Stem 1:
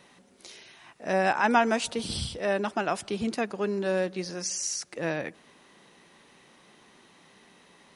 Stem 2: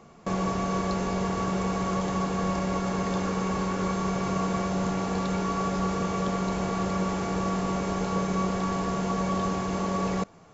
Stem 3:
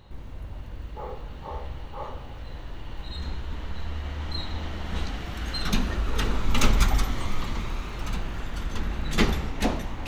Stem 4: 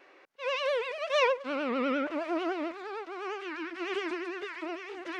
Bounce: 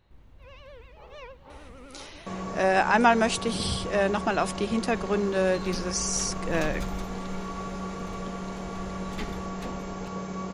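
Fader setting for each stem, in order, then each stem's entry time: +2.5, -7.5, -14.0, -19.5 dB; 1.50, 2.00, 0.00, 0.00 s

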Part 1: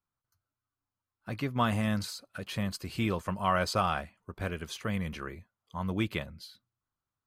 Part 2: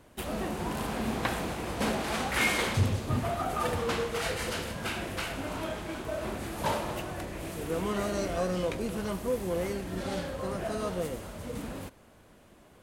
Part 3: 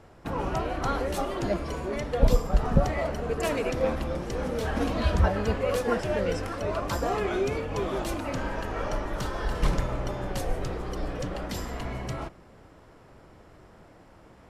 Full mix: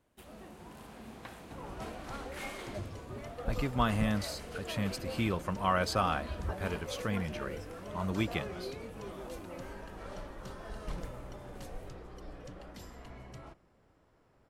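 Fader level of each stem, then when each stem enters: -1.5, -17.0, -15.0 dB; 2.20, 0.00, 1.25 s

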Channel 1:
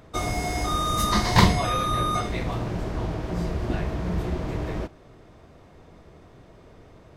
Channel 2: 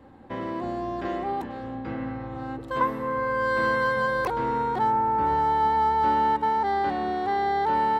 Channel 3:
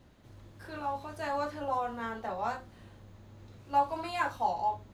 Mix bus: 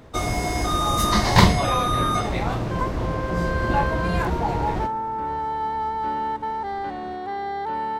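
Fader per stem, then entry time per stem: +2.5, -4.0, +2.5 dB; 0.00, 0.00, 0.00 s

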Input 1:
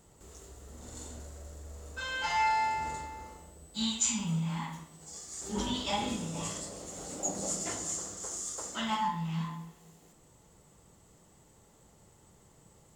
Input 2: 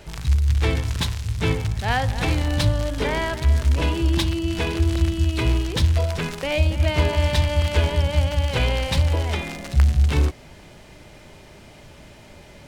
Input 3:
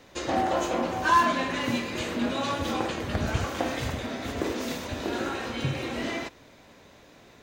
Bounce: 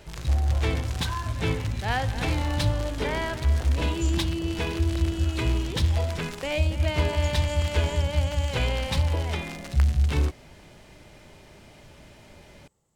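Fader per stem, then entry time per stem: -12.5, -4.5, -14.5 dB; 0.00, 0.00, 0.00 s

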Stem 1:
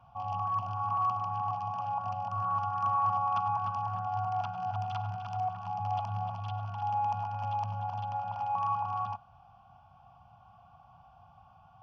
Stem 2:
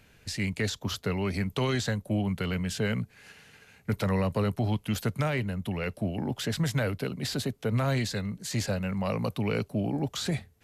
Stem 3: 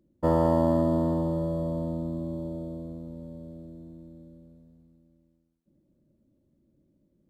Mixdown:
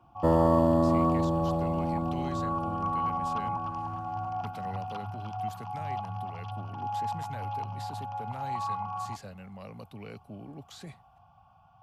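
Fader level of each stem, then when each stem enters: -2.0, -15.0, 0.0 dB; 0.00, 0.55, 0.00 s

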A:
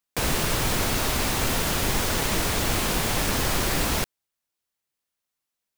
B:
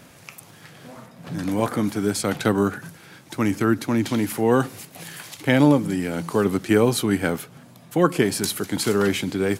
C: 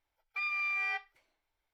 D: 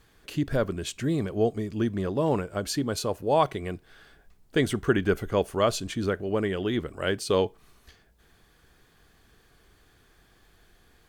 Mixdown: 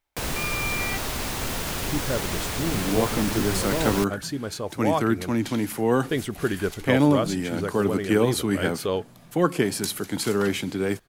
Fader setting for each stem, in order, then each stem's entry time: -4.5, -3.0, +2.5, -2.5 dB; 0.00, 1.40, 0.00, 1.55 s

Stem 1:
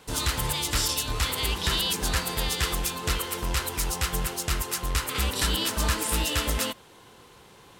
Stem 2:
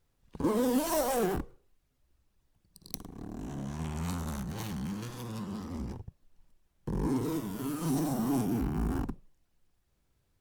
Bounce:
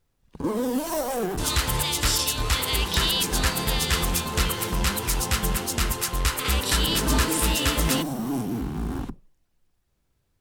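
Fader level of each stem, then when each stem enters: +3.0, +2.0 dB; 1.30, 0.00 s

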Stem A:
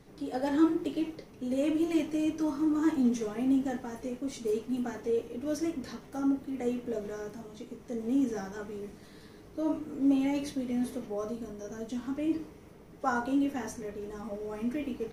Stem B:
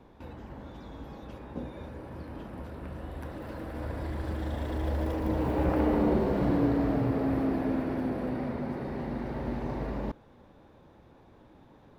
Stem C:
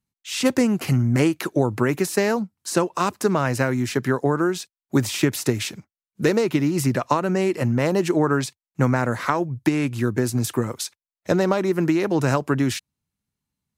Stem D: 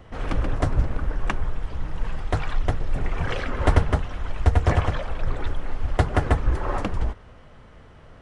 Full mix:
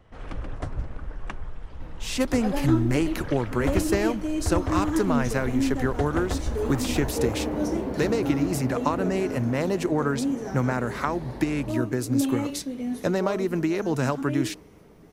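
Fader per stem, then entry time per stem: +1.0, -4.0, -5.0, -9.5 dB; 2.10, 1.60, 1.75, 0.00 s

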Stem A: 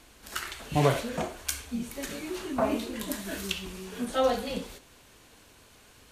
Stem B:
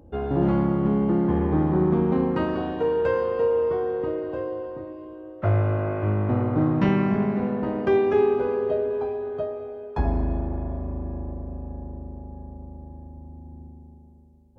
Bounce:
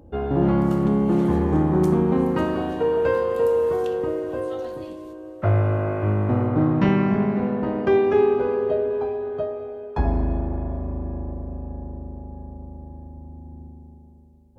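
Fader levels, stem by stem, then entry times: -14.5, +2.0 dB; 0.35, 0.00 s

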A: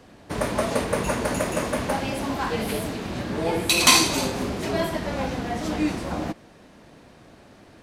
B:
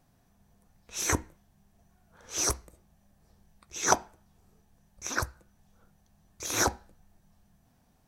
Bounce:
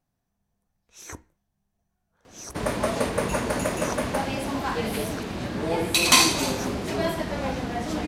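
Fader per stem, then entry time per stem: -1.0, -12.5 dB; 2.25, 0.00 s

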